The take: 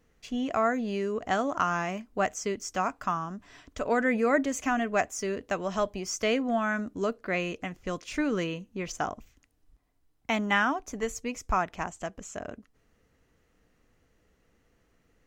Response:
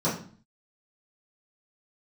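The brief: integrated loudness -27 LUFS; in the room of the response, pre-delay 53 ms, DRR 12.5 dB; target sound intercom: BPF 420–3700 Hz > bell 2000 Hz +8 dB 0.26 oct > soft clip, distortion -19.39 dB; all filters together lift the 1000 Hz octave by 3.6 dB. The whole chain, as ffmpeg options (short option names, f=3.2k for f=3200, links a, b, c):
-filter_complex "[0:a]equalizer=f=1k:t=o:g=5,asplit=2[a][b];[1:a]atrim=start_sample=2205,adelay=53[c];[b][c]afir=irnorm=-1:irlink=0,volume=-24.5dB[d];[a][d]amix=inputs=2:normalize=0,highpass=420,lowpass=3.7k,equalizer=f=2k:t=o:w=0.26:g=8,asoftclip=threshold=-13dB,volume=2dB"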